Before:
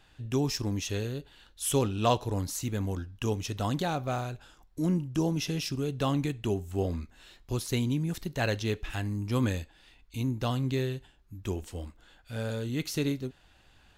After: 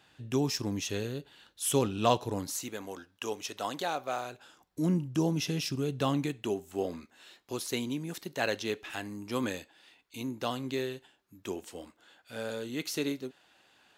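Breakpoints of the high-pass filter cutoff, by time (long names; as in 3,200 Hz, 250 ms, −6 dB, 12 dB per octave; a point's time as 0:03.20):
0:02.30 140 Hz
0:02.78 440 Hz
0:04.16 440 Hz
0:04.86 110 Hz
0:05.92 110 Hz
0:06.56 280 Hz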